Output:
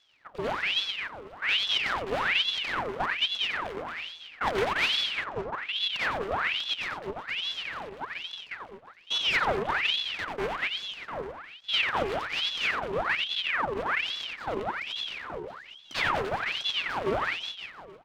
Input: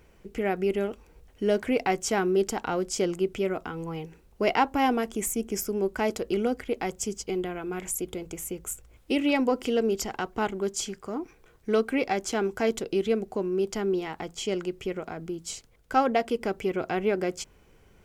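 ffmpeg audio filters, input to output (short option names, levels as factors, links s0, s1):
-filter_complex "[0:a]highpass=f=170:t=q:w=0.5412,highpass=f=170:t=q:w=1.307,lowpass=f=2500:t=q:w=0.5176,lowpass=f=2500:t=q:w=0.7071,lowpass=f=2500:t=q:w=1.932,afreqshift=-62,asuperstop=centerf=670:order=8:qfactor=5.8,aecho=1:1:90|207|359.1|556.8|813.9:0.631|0.398|0.251|0.158|0.1,aeval=exprs='abs(val(0))':c=same,asettb=1/sr,asplit=3[s0][s1][s2];[s0]atrim=end=4.754[s3];[s1]atrim=start=4.75:end=5.73,asetpts=PTS-STARTPTS,afade=t=in:d=0.004:c=qsin,afade=t=out:st=0.976:d=0.004:c=qsin,adynamicsmooth=sensitivity=7.5:basefreq=710[s4];[s2]atrim=start=5.726[s5];[s3][s4]acrossfade=d=0.004:c1=hsin:c2=qsin[s6];[s6][s5]acrossfade=d=0.004:c1=qsin:c2=hsin,asettb=1/sr,asplit=3[s7][s8][s9];[s7]atrim=end=14.774[s10];[s8]atrim=start=14.77:end=16.2,asetpts=PTS-STARTPTS,afade=t=in:d=0.004:c=qsin,afade=t=out:st=1.426:d=0.004:c=qsin,afreqshift=-35[s11];[s9]atrim=start=16.196[s12];[s10][s11]acrossfade=d=0.004:c1=hsin:c2=qsin[s13];[s13][s12]acrossfade=d=0.004:c1=qsin:c2=hsin,aeval=exprs='val(0)*sin(2*PI*1900*n/s+1900*0.8/1.2*sin(2*PI*1.2*n/s))':c=same,volume=0.891"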